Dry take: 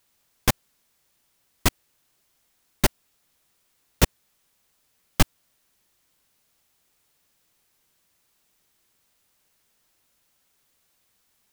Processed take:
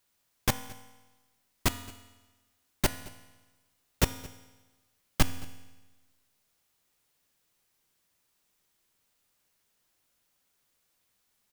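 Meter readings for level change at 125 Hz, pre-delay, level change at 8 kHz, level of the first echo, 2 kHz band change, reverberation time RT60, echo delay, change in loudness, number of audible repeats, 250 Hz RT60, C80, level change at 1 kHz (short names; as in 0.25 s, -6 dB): -6.0 dB, 4 ms, -5.5 dB, -23.0 dB, -5.5 dB, 1.2 s, 0.22 s, -6.5 dB, 1, 1.1 s, 14.0 dB, -5.5 dB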